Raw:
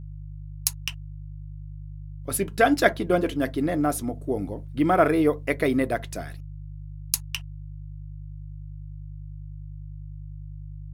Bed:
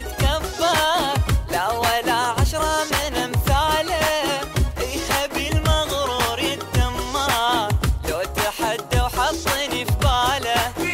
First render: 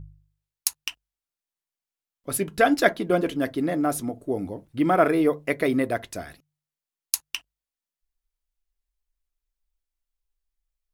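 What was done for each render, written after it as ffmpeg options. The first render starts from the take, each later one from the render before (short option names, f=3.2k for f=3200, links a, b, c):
-af "bandreject=f=50:t=h:w=4,bandreject=f=100:t=h:w=4,bandreject=f=150:t=h:w=4"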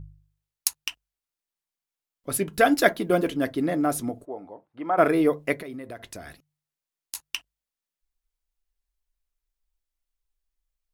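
-filter_complex "[0:a]asettb=1/sr,asplit=3[a][b][c];[a]atrim=end=2.534[d];[b]atrim=start=2.53:end=3.29,asetpts=PTS-STARTPTS,afade=t=in:d=0.004:c=qsin,afade=t=out:st=0.756:d=0.004:c=qsin,highshelf=f=11k:g=11[e];[c]atrim=start=3.286[f];[d][e]acrossfade=d=0.004:c1=hsin:c2=qsin[g];[g][f]acrossfade=d=0.004:c1=qsin:c2=hsin,asplit=3[h][i][j];[h]afade=t=out:st=4.24:d=0.02[k];[i]bandpass=f=900:t=q:w=1.6,afade=t=in:st=4.24:d=0.02,afade=t=out:st=4.97:d=0.02[l];[j]afade=t=in:st=4.97:d=0.02[m];[k][l][m]amix=inputs=3:normalize=0,asettb=1/sr,asplit=3[n][o][p];[n]atrim=end=5.594[q];[o]atrim=start=5.59:end=7.15,asetpts=PTS-STARTPTS,afade=t=in:d=0.004:c=qsin,afade=t=out:st=1.556:d=0.004:c=qsin,acompressor=threshold=-35dB:ratio=6:attack=3.2:release=140:knee=1:detection=peak[r];[p]atrim=start=7.146[s];[q][r]acrossfade=d=0.004:c1=hsin:c2=qsin[t];[t][s]acrossfade=d=0.004:c1=qsin:c2=hsin"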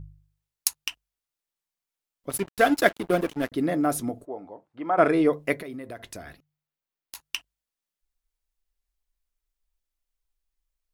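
-filter_complex "[0:a]asettb=1/sr,asplit=3[a][b][c];[a]atrim=end=2.304[d];[b]atrim=start=2.3:end=3.52,asetpts=PTS-STARTPTS,afade=t=in:d=0.004:c=qsin,afade=t=out:st=1.216:d=0.004:c=qsin,aeval=exprs='sgn(val(0))*max(abs(val(0))-0.0224,0)':c=same[e];[c]atrim=start=3.516[f];[d][e]acrossfade=d=0.004:c1=hsin:c2=qsin[g];[g][f]acrossfade=d=0.004:c1=qsin:c2=hsin,asettb=1/sr,asplit=3[h][i][j];[h]atrim=end=4.274[k];[i]atrim=start=4.27:end=5.33,asetpts=PTS-STARTPTS,afade=t=in:d=0.004:c=qsin,afade=t=out:st=1.056:d=0.004:c=qsin,lowpass=f=9k:w=0.5412,lowpass=f=9k:w=1.3066[l];[j]atrim=start=5.326[m];[k][l]acrossfade=d=0.004:c1=hsin:c2=qsin[n];[n][m]acrossfade=d=0.004:c1=qsin:c2=hsin,asettb=1/sr,asplit=3[o][p][q];[o]atrim=end=6.224[r];[p]atrim=start=6.22:end=7.21,asetpts=PTS-STARTPTS,afade=t=in:d=0.004:c=qsin,afade=t=out:st=0.986:d=0.004:c=qsin,equalizer=f=8.6k:w=0.7:g=-10[s];[q]atrim=start=7.206[t];[r][s]acrossfade=d=0.004:c1=hsin:c2=qsin[u];[u][t]acrossfade=d=0.004:c1=qsin:c2=hsin"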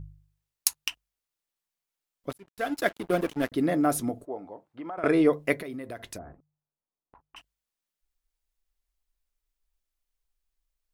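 -filter_complex "[0:a]asettb=1/sr,asplit=3[a][b][c];[a]atrim=end=4.364[d];[b]atrim=start=4.36:end=5.04,asetpts=PTS-STARTPTS,afade=t=in:d=0.004:c=qsin,afade=t=out:st=0.676:d=0.004:c=qsin,acompressor=threshold=-34dB:ratio=6:attack=3.2:release=140:knee=1:detection=peak[e];[c]atrim=start=5.036[f];[d][e]acrossfade=d=0.004:c1=hsin:c2=qsin[g];[g][f]acrossfade=d=0.004:c1=qsin:c2=hsin,asplit=3[h][i][j];[h]afade=t=out:st=6.17:d=0.02[k];[i]lowpass=f=1.1k:w=0.5412,lowpass=f=1.1k:w=1.3066,afade=t=in:st=6.17:d=0.02,afade=t=out:st=7.36:d=0.02[l];[j]afade=t=in:st=7.36:d=0.02[m];[k][l][m]amix=inputs=3:normalize=0,asplit=2[n][o];[n]atrim=end=2.33,asetpts=PTS-STARTPTS,afade=t=out:st=2.326:d=0.004:c=hsin[p];[o]atrim=start=2.33,asetpts=PTS-STARTPTS,afade=t=in:d=1.08[q];[p][q]concat=n=2:v=0:a=1"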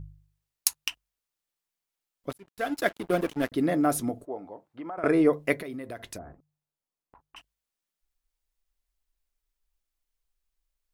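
-filter_complex "[0:a]asettb=1/sr,asplit=3[a][b][c];[a]atrim=end=4.834[d];[b]atrim=start=4.83:end=5.34,asetpts=PTS-STARTPTS,afade=t=in:d=0.004:c=qsin,afade=t=out:st=0.506:d=0.004:c=qsin,equalizer=f=3.4k:t=o:w=0.77:g=-7[e];[c]atrim=start=5.336[f];[d][e]acrossfade=d=0.004:c1=hsin:c2=qsin[g];[g][f]acrossfade=d=0.004:c1=qsin:c2=hsin"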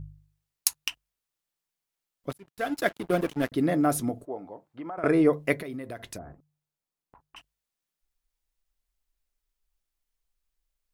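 -af "equalizer=f=140:t=o:w=0.78:g=4"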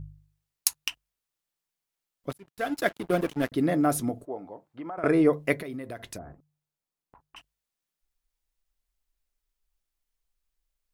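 -af anull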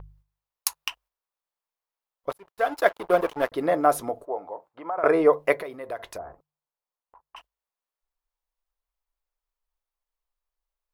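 -af "agate=range=-7dB:threshold=-55dB:ratio=16:detection=peak,equalizer=f=125:t=o:w=1:g=-10,equalizer=f=250:t=o:w=1:g=-9,equalizer=f=500:t=o:w=1:g=7,equalizer=f=1k:t=o:w=1:g=10,equalizer=f=8k:t=o:w=1:g=-4"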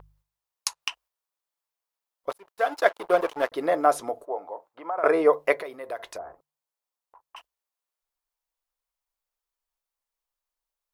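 -filter_complex "[0:a]acrossover=split=9300[a][b];[b]acompressor=threshold=-59dB:ratio=4:attack=1:release=60[c];[a][c]amix=inputs=2:normalize=0,bass=f=250:g=-10,treble=f=4k:g=3"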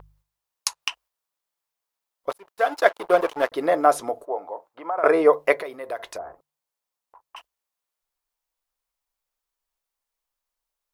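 -af "volume=3dB"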